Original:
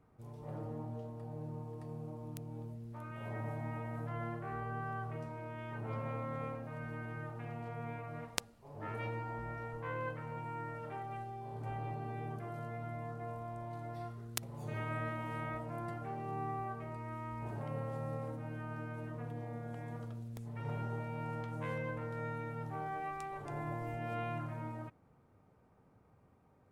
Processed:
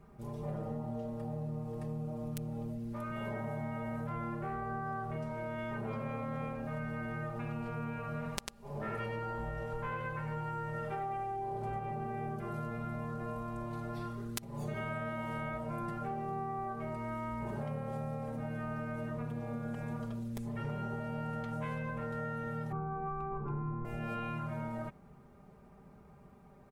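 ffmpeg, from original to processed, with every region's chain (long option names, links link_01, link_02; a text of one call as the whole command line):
ffmpeg -i in.wav -filter_complex "[0:a]asettb=1/sr,asplit=3[link_01][link_02][link_03];[link_01]atrim=end=8.164[link_04];[link_02]atrim=start=8.16:end=11.79,asetpts=PTS-STARTPTS,afade=type=in:duration=0.004:curve=qsin,afade=type=out:start_time=3.626:duration=0.004:curve=qsin,acompressor=mode=upward:threshold=-59dB:ratio=2.5:attack=3.2:release=140:knee=2.83:detection=peak,aecho=1:1:97:0.631,atrim=end_sample=160083[link_05];[link_03]atrim=start=11.786[link_06];[link_04][link_05]acrossfade=duration=0.004:curve1=hsin:curve2=qsin[link_07];[link_07][link_06]acrossfade=duration=0.004:curve1=qsin:curve2=hsin,asettb=1/sr,asplit=3[link_08][link_09][link_10];[link_08]atrim=end=22.724[link_11];[link_09]atrim=start=22.72:end=23.85,asetpts=PTS-STARTPTS,afade=type=in:duration=0.004:curve=qsin,afade=type=out:start_time=1.126:duration=0.004:curve=qsin,lowpass=1000,aecho=1:1:0.8:0.9,atrim=end_sample=49833[link_12];[link_10]atrim=start=23.846[link_13];[link_11][link_12]acrossfade=duration=0.004:curve1=hsin:curve2=qsin[link_14];[link_14][link_13]acrossfade=duration=0.004:curve1=qsin:curve2=hsin,lowshelf=frequency=130:gain=7,aecho=1:1:5:0.81,acompressor=threshold=-41dB:ratio=6,volume=6dB" out.wav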